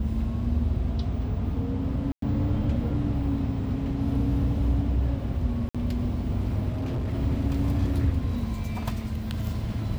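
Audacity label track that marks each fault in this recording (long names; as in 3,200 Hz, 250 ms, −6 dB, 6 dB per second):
2.120000	2.220000	drop-out 103 ms
5.690000	5.750000	drop-out 56 ms
6.710000	7.140000	clipping −25.5 dBFS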